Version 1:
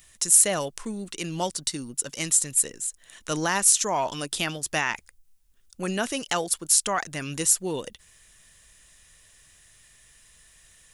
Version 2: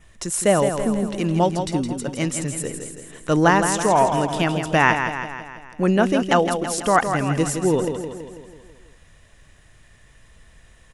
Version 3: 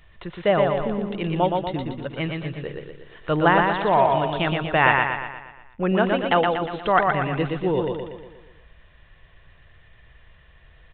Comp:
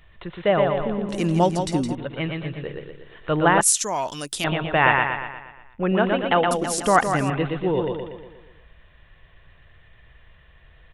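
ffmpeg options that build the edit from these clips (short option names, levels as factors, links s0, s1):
-filter_complex "[1:a]asplit=2[s0][s1];[2:a]asplit=4[s2][s3][s4][s5];[s2]atrim=end=1.092[s6];[s0]atrim=start=1.088:end=1.952[s7];[s3]atrim=start=1.948:end=3.612[s8];[0:a]atrim=start=3.608:end=4.442[s9];[s4]atrim=start=4.438:end=6.512[s10];[s1]atrim=start=6.508:end=7.302[s11];[s5]atrim=start=7.298[s12];[s6][s7]acrossfade=d=0.004:c1=hsin:c2=hsin[s13];[s13][s8]acrossfade=d=0.004:c1=hsin:c2=hsin[s14];[s14][s9]acrossfade=d=0.004:c1=hsin:c2=hsin[s15];[s15][s10]acrossfade=d=0.004:c1=hsin:c2=hsin[s16];[s16][s11]acrossfade=d=0.004:c1=hsin:c2=hsin[s17];[s17][s12]acrossfade=d=0.004:c1=hsin:c2=hsin"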